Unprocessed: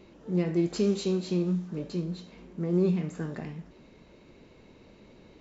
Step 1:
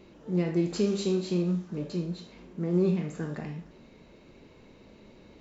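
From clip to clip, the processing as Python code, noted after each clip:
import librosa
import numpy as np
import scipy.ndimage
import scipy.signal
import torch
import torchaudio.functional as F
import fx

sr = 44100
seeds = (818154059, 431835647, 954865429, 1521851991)

y = fx.rev_schroeder(x, sr, rt60_s=0.34, comb_ms=27, drr_db=7.5)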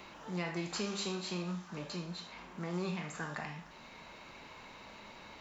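y = fx.low_shelf_res(x, sr, hz=620.0, db=-12.5, q=1.5)
y = fx.band_squash(y, sr, depth_pct=40)
y = F.gain(torch.from_numpy(y), 2.5).numpy()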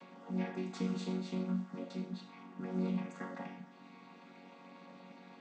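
y = fx.chord_vocoder(x, sr, chord='major triad', root=54)
y = F.gain(torch.from_numpy(y), 1.5).numpy()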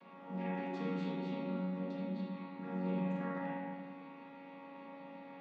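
y = scipy.signal.sosfilt(scipy.signal.butter(2, 3600.0, 'lowpass', fs=sr, output='sos'), x)
y = fx.rev_spring(y, sr, rt60_s=1.9, pass_ms=(31, 36, 49), chirp_ms=45, drr_db=-7.0)
y = F.gain(torch.from_numpy(y), -5.0).numpy()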